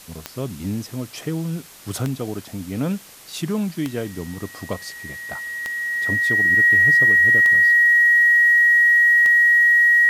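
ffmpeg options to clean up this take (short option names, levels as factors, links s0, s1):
-af "adeclick=t=4,bandreject=f=1900:w=30,afwtdn=0.0071"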